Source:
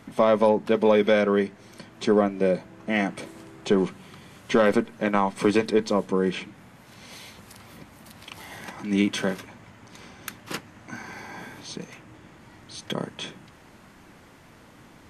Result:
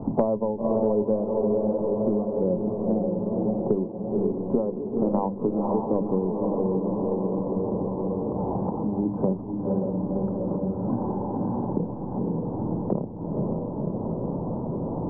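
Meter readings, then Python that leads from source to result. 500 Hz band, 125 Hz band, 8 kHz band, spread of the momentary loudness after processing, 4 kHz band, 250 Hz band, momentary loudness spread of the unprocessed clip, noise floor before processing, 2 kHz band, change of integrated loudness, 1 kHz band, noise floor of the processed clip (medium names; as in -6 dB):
-0.5 dB, +6.0 dB, under -35 dB, 5 LU, under -40 dB, +2.5 dB, 20 LU, -52 dBFS, under -30 dB, -2.5 dB, -2.5 dB, -33 dBFS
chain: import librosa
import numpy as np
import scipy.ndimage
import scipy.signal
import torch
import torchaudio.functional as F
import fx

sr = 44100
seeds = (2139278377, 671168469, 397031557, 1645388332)

y = scipy.signal.sosfilt(scipy.signal.ellip(4, 1.0, 50, 940.0, 'lowpass', fs=sr, output='sos'), x)
y = fx.tremolo_shape(y, sr, shape='triangle', hz=1.2, depth_pct=95)
y = fx.tilt_eq(y, sr, slope=-3.0)
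y = fx.hum_notches(y, sr, base_hz=50, count=8)
y = fx.echo_diffused(y, sr, ms=530, feedback_pct=56, wet_db=-4.0)
y = fx.band_squash(y, sr, depth_pct=100)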